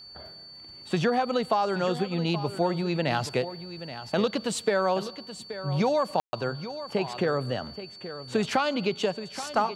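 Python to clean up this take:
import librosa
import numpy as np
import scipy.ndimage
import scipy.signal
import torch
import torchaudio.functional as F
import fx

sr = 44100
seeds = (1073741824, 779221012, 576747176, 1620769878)

y = fx.notch(x, sr, hz=4500.0, q=30.0)
y = fx.fix_ambience(y, sr, seeds[0], print_start_s=0.35, print_end_s=0.85, start_s=6.2, end_s=6.33)
y = fx.fix_echo_inverse(y, sr, delay_ms=827, level_db=-12.5)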